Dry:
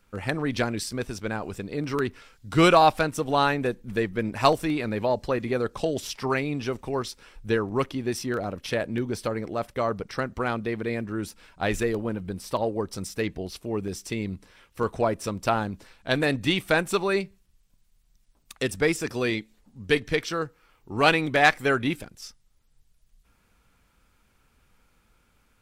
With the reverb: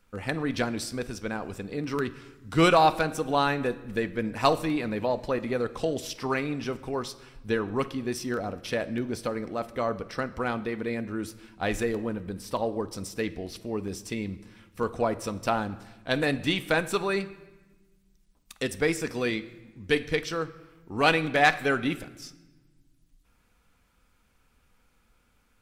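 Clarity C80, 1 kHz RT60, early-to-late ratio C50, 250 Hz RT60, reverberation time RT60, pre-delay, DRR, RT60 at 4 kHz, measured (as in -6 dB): 18.0 dB, 1.1 s, 16.0 dB, 2.0 s, 1.1 s, 4 ms, 11.0 dB, 0.95 s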